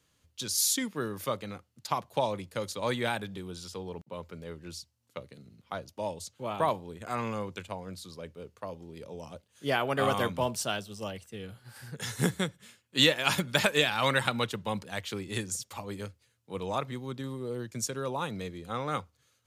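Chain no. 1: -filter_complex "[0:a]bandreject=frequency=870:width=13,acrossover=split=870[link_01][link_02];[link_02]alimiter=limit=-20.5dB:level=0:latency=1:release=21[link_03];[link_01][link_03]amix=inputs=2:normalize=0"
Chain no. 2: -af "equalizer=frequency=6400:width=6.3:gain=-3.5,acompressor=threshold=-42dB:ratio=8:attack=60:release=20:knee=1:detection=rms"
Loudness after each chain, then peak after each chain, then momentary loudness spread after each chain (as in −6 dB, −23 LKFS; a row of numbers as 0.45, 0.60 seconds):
−33.5, −40.5 LKFS; −13.5, −19.0 dBFS; 16, 8 LU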